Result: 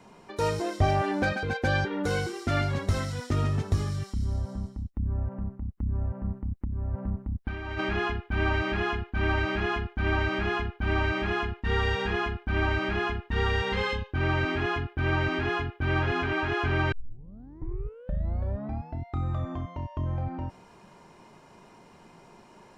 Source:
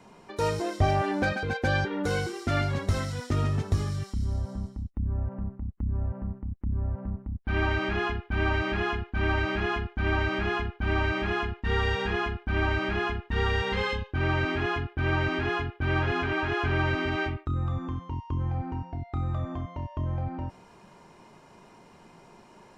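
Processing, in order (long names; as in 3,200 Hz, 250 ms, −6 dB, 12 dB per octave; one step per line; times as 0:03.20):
0:06.24–0:07.81: compressor whose output falls as the input rises −29 dBFS, ratio −0.5
0:16.92: tape start 2.12 s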